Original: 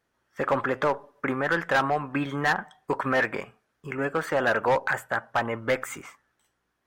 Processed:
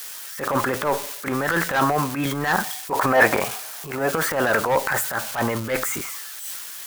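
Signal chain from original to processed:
spike at every zero crossing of −29 dBFS
0:02.91–0:04.11: parametric band 740 Hz +11 dB 1.1 octaves
transient designer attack −11 dB, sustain +7 dB
level +4.5 dB

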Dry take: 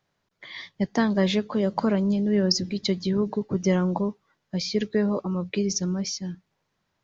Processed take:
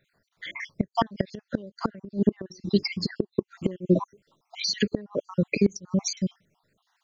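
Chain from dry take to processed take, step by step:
time-frequency cells dropped at random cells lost 60%
gate with flip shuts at −18 dBFS, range −26 dB
0:02.01–0:04.05: hollow resonant body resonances 360/1,100/2,700 Hz, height 7 dB, ringing for 35 ms
level +8 dB

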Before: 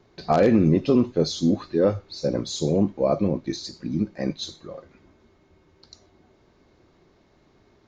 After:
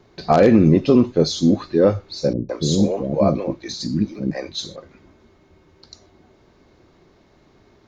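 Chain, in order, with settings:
0:02.33–0:04.76: multiband delay without the direct sound lows, highs 160 ms, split 410 Hz
level +5 dB

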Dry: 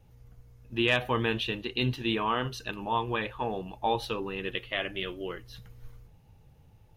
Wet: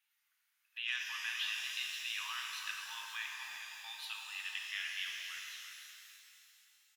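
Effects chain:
delay that plays each chunk backwards 284 ms, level −13.5 dB
brickwall limiter −20 dBFS, peak gain reduction 6.5 dB
inverse Chebyshev high-pass filter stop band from 460 Hz, stop band 60 dB
parametric band 5,600 Hz −5.5 dB
far-end echo of a speakerphone 340 ms, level −9 dB
reverb with rising layers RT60 3 s, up +12 semitones, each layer −8 dB, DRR 0.5 dB
level −4.5 dB

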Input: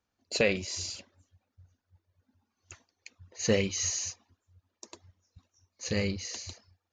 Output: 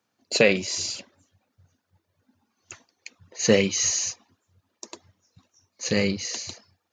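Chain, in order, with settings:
high-pass filter 120 Hz 24 dB per octave
level +7.5 dB

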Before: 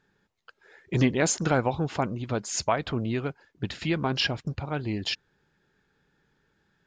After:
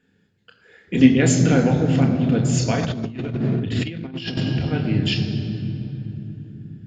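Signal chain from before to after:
parametric band 990 Hz −12.5 dB 1.6 octaves
convolution reverb RT60 3.5 s, pre-delay 3 ms, DRR 1 dB
0:02.83–0:04.43: compressor whose output falls as the input rises −23 dBFS, ratio −0.5
level −1 dB

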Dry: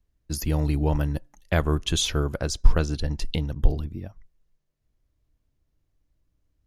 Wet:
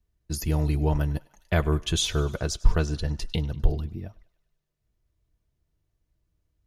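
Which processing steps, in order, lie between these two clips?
notch comb filter 270 Hz
feedback echo with a high-pass in the loop 100 ms, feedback 64%, high-pass 630 Hz, level −21.5 dB

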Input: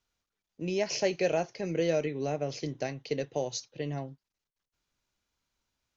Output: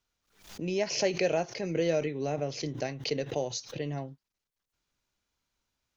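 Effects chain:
background raised ahead of every attack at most 120 dB per second

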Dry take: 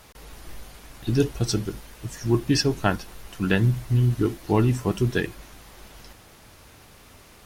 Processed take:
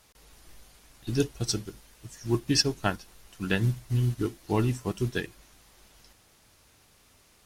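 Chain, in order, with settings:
parametric band 7,400 Hz +6.5 dB 2.4 octaves
expander for the loud parts 1.5 to 1, over −33 dBFS
level −4 dB

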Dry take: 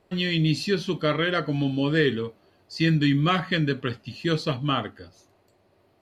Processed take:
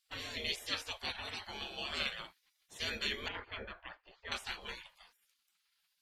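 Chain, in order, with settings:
0:03.28–0:04.32: low-pass filter 1,100 Hz 12 dB per octave
gate on every frequency bin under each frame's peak −25 dB weak
level +1.5 dB

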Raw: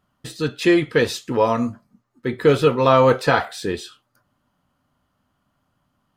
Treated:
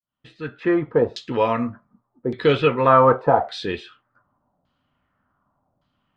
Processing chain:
fade in at the beginning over 0.89 s
auto-filter low-pass saw down 0.86 Hz 610–4,400 Hz
level −2.5 dB

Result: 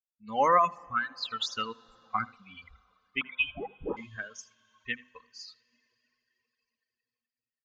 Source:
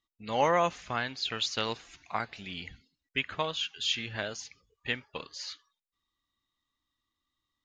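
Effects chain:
spectral dynamics exaggerated over time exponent 2
parametric band 1,200 Hz +12 dB 0.63 octaves
comb filter 3.9 ms, depth 36%
convolution reverb RT60 3.8 s, pre-delay 53 ms, DRR 14.5 dB
reverb reduction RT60 1.7 s
0:01.84–0:02.35: low-shelf EQ 380 Hz +11.5 dB
0:03.21–0:03.97: voice inversion scrambler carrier 3,600 Hz
mains-hum notches 50/100/150/200/250 Hz
single-tap delay 81 ms −21.5 dB

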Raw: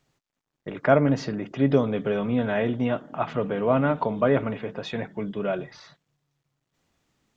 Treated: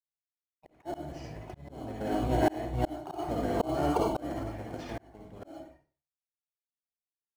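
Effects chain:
source passing by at 0:03.14, 10 m/s, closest 7.8 metres
noise gate −48 dBFS, range −36 dB
drawn EQ curve 150 Hz 0 dB, 220 Hz −17 dB, 310 Hz −19 dB, 740 Hz +9 dB, 1,100 Hz −7 dB, 1,700 Hz −1 dB, 3,500 Hz −11 dB, 5,900 Hz +2 dB, 8,600 Hz −30 dB
in parallel at −9 dB: decimation without filtering 12×
on the sum: pitch-shifted copies added −12 semitones 0 dB, +4 semitones −10 dB
convolution reverb RT60 0.35 s, pre-delay 44 ms, DRR 0 dB
volume swells 547 ms
level −3 dB

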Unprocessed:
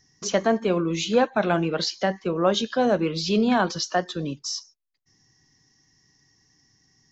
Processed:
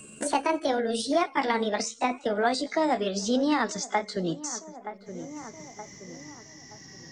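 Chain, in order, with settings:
pitch glide at a constant tempo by +6.5 semitones ending unshifted
feedback echo with a low-pass in the loop 922 ms, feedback 31%, low-pass 1,800 Hz, level −23.5 dB
multiband upward and downward compressor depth 70%
level −2.5 dB

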